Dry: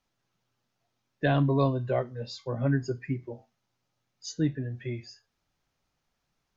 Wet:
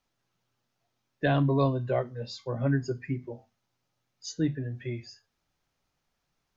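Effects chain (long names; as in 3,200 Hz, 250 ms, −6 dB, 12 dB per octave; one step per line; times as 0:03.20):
mains-hum notches 50/100/150/200/250 Hz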